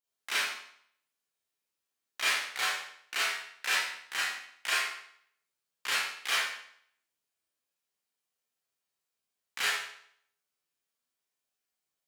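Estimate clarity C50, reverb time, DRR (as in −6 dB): −2.0 dB, 0.65 s, −10.0 dB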